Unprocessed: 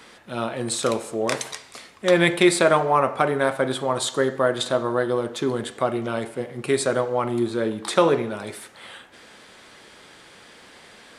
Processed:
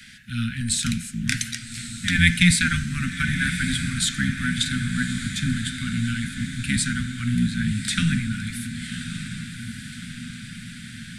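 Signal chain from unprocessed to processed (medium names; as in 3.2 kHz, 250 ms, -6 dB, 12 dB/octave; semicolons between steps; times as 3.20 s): octave divider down 1 oct, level -2 dB; Chebyshev band-stop 250–1500 Hz, order 5; echo that smears into a reverb 1175 ms, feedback 61%, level -10 dB; trim +4 dB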